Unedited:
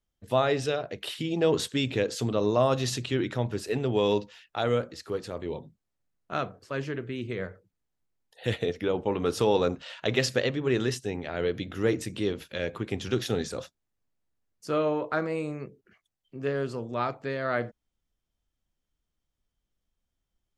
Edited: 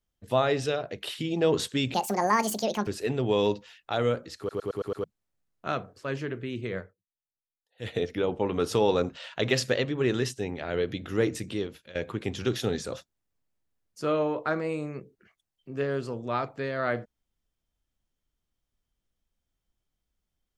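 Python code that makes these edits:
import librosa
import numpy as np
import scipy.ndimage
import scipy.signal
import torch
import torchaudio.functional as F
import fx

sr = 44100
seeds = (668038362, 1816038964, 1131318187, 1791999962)

y = fx.edit(x, sr, fx.speed_span(start_s=1.94, length_s=1.59, speed=1.71),
    fx.stutter_over(start_s=5.04, slice_s=0.11, count=6),
    fx.fade_down_up(start_s=7.44, length_s=1.17, db=-21.0, fade_s=0.16),
    fx.fade_out_to(start_s=12.09, length_s=0.52, floor_db=-16.5), tone=tone)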